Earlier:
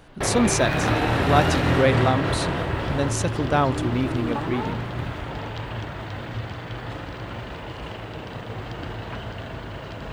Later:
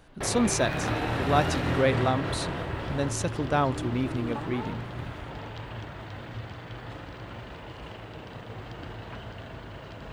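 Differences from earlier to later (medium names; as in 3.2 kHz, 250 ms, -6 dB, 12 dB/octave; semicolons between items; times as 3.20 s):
speech -4.0 dB; background -7.0 dB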